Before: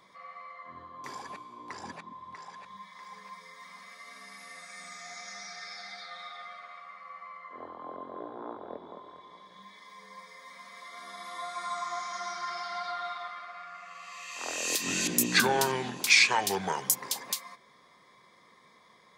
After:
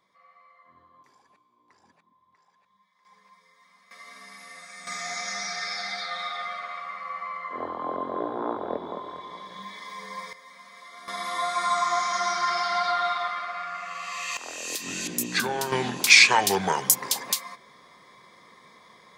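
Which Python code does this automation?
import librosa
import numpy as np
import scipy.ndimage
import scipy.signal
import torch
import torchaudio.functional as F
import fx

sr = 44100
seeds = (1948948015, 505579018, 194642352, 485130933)

y = fx.gain(x, sr, db=fx.steps((0.0, -10.5), (1.03, -19.5), (3.05, -10.5), (3.91, 2.0), (4.87, 11.0), (10.33, 0.0), (11.08, 10.5), (14.37, -2.5), (15.72, 6.5)))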